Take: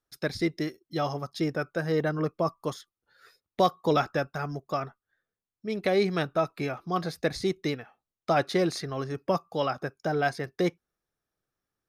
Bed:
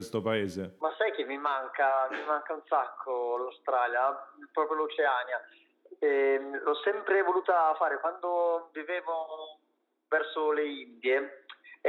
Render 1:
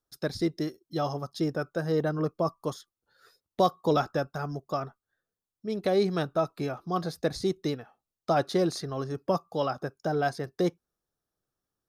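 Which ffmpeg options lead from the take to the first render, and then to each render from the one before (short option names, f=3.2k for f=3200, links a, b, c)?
-af "equalizer=f=2.2k:t=o:w=0.81:g=-10"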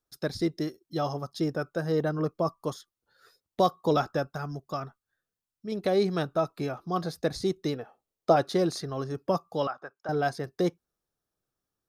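-filter_complex "[0:a]asettb=1/sr,asplit=3[a][b][c];[a]atrim=end=4.374[d];[b]atrim=start=4.37:end=5.72,asetpts=PTS-STARTPTS,afade=t=in:d=0.004:c=qsin,afade=t=out:st=1.346:d=0.004:c=qsin,equalizer=f=520:w=0.8:g=-4.5[e];[c]atrim=start=5.716[f];[d][e]acrossfade=d=0.004:c1=hsin:c2=qsin[g];[g][f]acrossfade=d=0.004:c1=qsin:c2=hsin,asettb=1/sr,asplit=3[h][i][j];[h]atrim=end=7.754[k];[i]atrim=start=7.75:end=8.36,asetpts=PTS-STARTPTS,afade=t=in:d=0.004:c=qsin,afade=t=out:st=0.606:d=0.004:c=qsin,equalizer=f=470:w=1.1:g=8.5[l];[j]atrim=start=8.356[m];[k][l]acrossfade=d=0.004:c1=hsin:c2=qsin[n];[n][m]acrossfade=d=0.004:c1=qsin:c2=hsin,asettb=1/sr,asplit=3[o][p][q];[o]atrim=end=9.674[r];[p]atrim=start=9.67:end=10.09,asetpts=PTS-STARTPTS,afade=t=in:d=0.004:c=qsin,afade=t=out:st=0.416:d=0.004:c=qsin,bandpass=f=1.3k:t=q:w=1.2[s];[q]atrim=start=10.086[t];[r][s]acrossfade=d=0.004:c1=hsin:c2=qsin[u];[u][t]acrossfade=d=0.004:c1=qsin:c2=hsin"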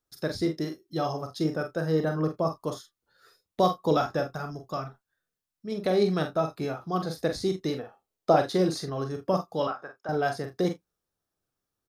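-filter_complex "[0:a]asplit=2[a][b];[b]adelay=32,volume=-13dB[c];[a][c]amix=inputs=2:normalize=0,aecho=1:1:44|54:0.422|0.168"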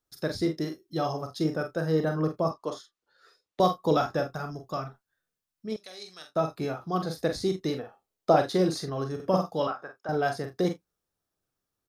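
-filter_complex "[0:a]asettb=1/sr,asplit=3[a][b][c];[a]atrim=end=2.514[d];[b]atrim=start=2.51:end=3.6,asetpts=PTS-STARTPTS,afade=t=in:d=0.004:c=qsin,afade=t=out:st=1.086:d=0.004:c=qsin,acrossover=split=250 7500:gain=0.224 1 0.2[e][f][g];[e][f][g]amix=inputs=3:normalize=0[h];[c]atrim=start=3.596[i];[d][h]acrossfade=d=0.004:c1=hsin:c2=qsin[j];[j][i]acrossfade=d=0.004:c1=qsin:c2=hsin,asettb=1/sr,asplit=3[k][l][m];[k]atrim=end=5.764[n];[l]atrim=start=5.76:end=6.36,asetpts=PTS-STARTPTS,afade=t=in:d=0.004:c=qsin,afade=t=out:st=0.596:d=0.004:c=qsin,bandpass=f=6.7k:t=q:w=1.1[o];[m]atrim=start=6.356[p];[n][o]acrossfade=d=0.004:c1=hsin:c2=qsin[q];[q][p]acrossfade=d=0.004:c1=qsin:c2=hsin,asettb=1/sr,asplit=3[r][s][t];[r]atrim=end=9.154[u];[s]atrim=start=9.15:end=9.58,asetpts=PTS-STARTPTS,afade=t=in:d=0.004:c=qsin,afade=t=out:st=0.426:d=0.004:c=qsin,asplit=2[v][w];[w]adelay=48,volume=-4dB[x];[v][x]amix=inputs=2:normalize=0,atrim=end_sample=18963[y];[t]atrim=start=9.576[z];[u][y]acrossfade=d=0.004:c1=hsin:c2=qsin[aa];[aa][z]acrossfade=d=0.004:c1=qsin:c2=hsin"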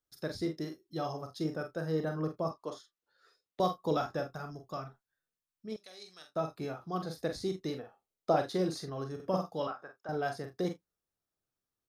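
-af "volume=-7dB"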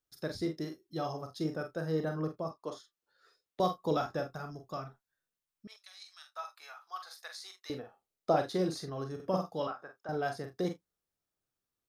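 -filter_complex "[0:a]asettb=1/sr,asplit=3[a][b][c];[a]atrim=end=5.674[d];[b]atrim=start=5.67:end=7.7,asetpts=PTS-STARTPTS,afade=t=in:d=0.004:c=qsin,afade=t=out:st=2.026:d=0.004:c=qsin,highpass=f=1k:w=0.5412,highpass=f=1k:w=1.3066[e];[c]atrim=start=7.696[f];[d][e]acrossfade=d=0.004:c1=hsin:c2=qsin[g];[g][f]acrossfade=d=0.004:c1=qsin:c2=hsin,asplit=2[h][i];[h]atrim=end=2.63,asetpts=PTS-STARTPTS,afade=t=out:st=2.19:d=0.44:silence=0.421697[j];[i]atrim=start=2.63,asetpts=PTS-STARTPTS,afade=t=in:d=0.004:c=hsin:silence=0.421697[k];[j][k]concat=n=2:v=0:a=1"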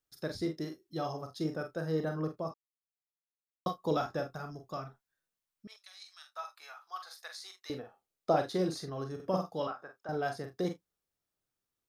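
-filter_complex "[0:a]asplit=3[a][b][c];[a]atrim=end=2.54,asetpts=PTS-STARTPTS,afade=t=out:st=2.536:d=0.004:c=hsin[d];[b]atrim=start=2.54:end=3.66,asetpts=PTS-STARTPTS,volume=0[e];[c]atrim=start=3.66,asetpts=PTS-STARTPTS,afade=t=in:d=0.004:c=hsin[f];[d][e][f]concat=n=3:v=0:a=1"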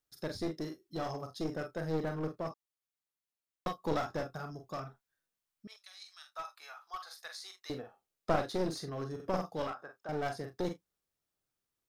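-af "aeval=exprs='clip(val(0),-1,0.0141)':c=same"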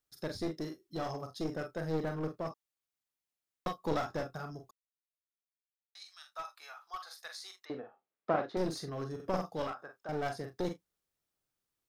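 -filter_complex "[0:a]asettb=1/sr,asplit=3[a][b][c];[a]atrim=end=7.654[d];[b]atrim=start=7.65:end=8.57,asetpts=PTS-STARTPTS,afade=t=in:d=0.004:c=qsin,afade=t=out:st=0.916:d=0.004:c=qsin,highpass=190,lowpass=2.2k[e];[c]atrim=start=8.566[f];[d][e]acrossfade=d=0.004:c1=hsin:c2=qsin[g];[g][f]acrossfade=d=0.004:c1=qsin:c2=hsin,asplit=3[h][i][j];[h]atrim=end=4.71,asetpts=PTS-STARTPTS,afade=t=out:st=4.706:d=0.004:c=hsin[k];[i]atrim=start=4.71:end=5.95,asetpts=PTS-STARTPTS,volume=0[l];[j]atrim=start=5.95,asetpts=PTS-STARTPTS,afade=t=in:d=0.004:c=hsin[m];[k][l][m]concat=n=3:v=0:a=1"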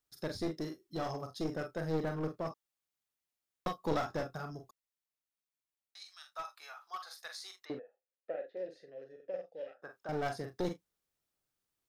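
-filter_complex "[0:a]asettb=1/sr,asplit=3[a][b][c];[a]atrim=end=6.514[d];[b]atrim=start=6.51:end=7.21,asetpts=PTS-STARTPTS,afade=t=in:d=0.004:c=qsin,afade=t=out:st=0.696:d=0.004:c=qsin,highpass=150[e];[c]atrim=start=7.206[f];[d][e]acrossfade=d=0.004:c1=hsin:c2=qsin[g];[g][f]acrossfade=d=0.004:c1=qsin:c2=hsin,asplit=3[h][i][j];[h]afade=t=out:st=7.78:d=0.02[k];[i]asplit=3[l][m][n];[l]bandpass=f=530:t=q:w=8,volume=0dB[o];[m]bandpass=f=1.84k:t=q:w=8,volume=-6dB[p];[n]bandpass=f=2.48k:t=q:w=8,volume=-9dB[q];[o][p][q]amix=inputs=3:normalize=0,afade=t=in:st=7.78:d=0.02,afade=t=out:st=9.82:d=0.02[r];[j]afade=t=in:st=9.82:d=0.02[s];[k][r][s]amix=inputs=3:normalize=0"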